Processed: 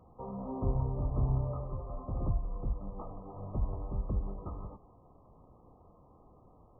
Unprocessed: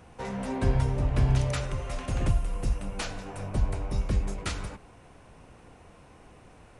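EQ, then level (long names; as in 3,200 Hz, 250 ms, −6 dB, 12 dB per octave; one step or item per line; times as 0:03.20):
linear-phase brick-wall low-pass 1,300 Hz
−6.5 dB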